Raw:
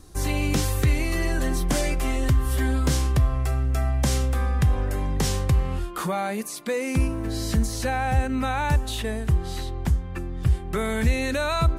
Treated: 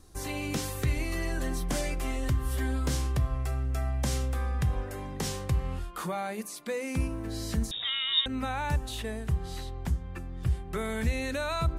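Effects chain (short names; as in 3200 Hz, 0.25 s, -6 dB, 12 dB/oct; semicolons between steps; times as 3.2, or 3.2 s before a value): notches 50/100/150/200/250/300/350 Hz; 7.71–8.26 inverted band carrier 3700 Hz; gain -6.5 dB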